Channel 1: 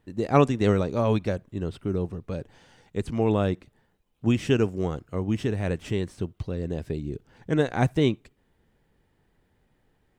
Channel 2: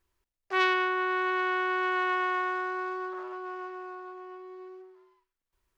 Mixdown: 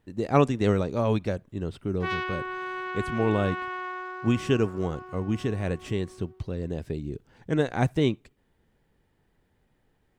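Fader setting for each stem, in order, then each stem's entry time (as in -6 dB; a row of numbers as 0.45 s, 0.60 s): -1.5 dB, -5.5 dB; 0.00 s, 1.50 s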